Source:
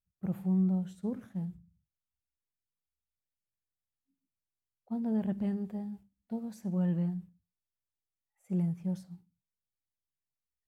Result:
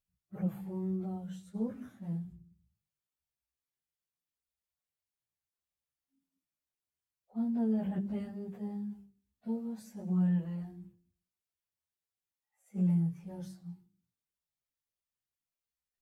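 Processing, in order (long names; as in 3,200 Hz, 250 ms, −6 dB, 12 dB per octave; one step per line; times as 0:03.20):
mains-hum notches 50/100/150/200/250/300/350/400 Hz
time stretch by phase vocoder 1.5×
level +2 dB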